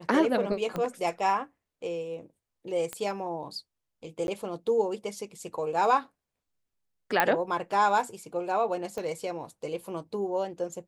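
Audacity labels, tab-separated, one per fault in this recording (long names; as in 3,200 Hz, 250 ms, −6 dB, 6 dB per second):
0.760000	0.760000	click −19 dBFS
2.930000	2.930000	click −17 dBFS
4.270000	4.280000	drop-out 11 ms
7.200000	7.200000	click −8 dBFS
8.980000	8.980000	click −22 dBFS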